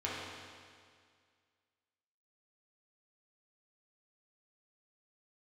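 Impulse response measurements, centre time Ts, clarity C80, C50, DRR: 124 ms, 0.5 dB, -2.0 dB, -7.5 dB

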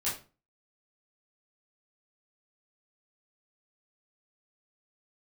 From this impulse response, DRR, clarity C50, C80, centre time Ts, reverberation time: -10.0 dB, 6.5 dB, 13.0 dB, 35 ms, 0.35 s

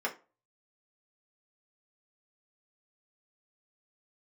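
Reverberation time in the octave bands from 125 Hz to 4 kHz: 0.35 s, 0.30 s, 0.35 s, 0.30 s, 0.25 s, 0.20 s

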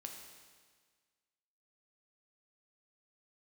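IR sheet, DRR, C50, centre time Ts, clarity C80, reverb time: 2.0 dB, 4.5 dB, 51 ms, 6.0 dB, 1.6 s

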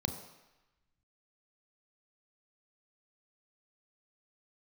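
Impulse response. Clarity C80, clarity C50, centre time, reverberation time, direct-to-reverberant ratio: 10.5 dB, 8.5 dB, 22 ms, 1.0 s, 6.0 dB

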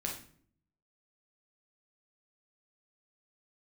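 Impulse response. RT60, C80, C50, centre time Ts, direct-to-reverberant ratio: 0.55 s, 11.0 dB, 6.0 dB, 27 ms, -0.5 dB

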